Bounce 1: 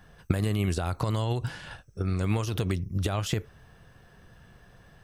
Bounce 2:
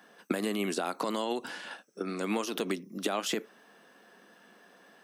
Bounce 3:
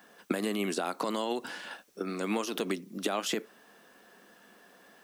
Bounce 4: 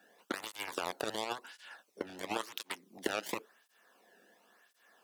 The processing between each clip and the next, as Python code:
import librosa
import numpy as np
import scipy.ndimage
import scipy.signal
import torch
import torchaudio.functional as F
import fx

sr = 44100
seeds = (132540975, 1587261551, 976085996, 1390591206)

y1 = scipy.signal.sosfilt(scipy.signal.butter(8, 210.0, 'highpass', fs=sr, output='sos'), x)
y1 = y1 * librosa.db_to_amplitude(1.0)
y2 = fx.dmg_noise_colour(y1, sr, seeds[0], colour='white', level_db=-69.0)
y3 = fx.cheby_harmonics(y2, sr, harmonics=(7,), levels_db=(-13,), full_scale_db=-16.0)
y3 = fx.flanger_cancel(y3, sr, hz=0.95, depth_ms=1.0)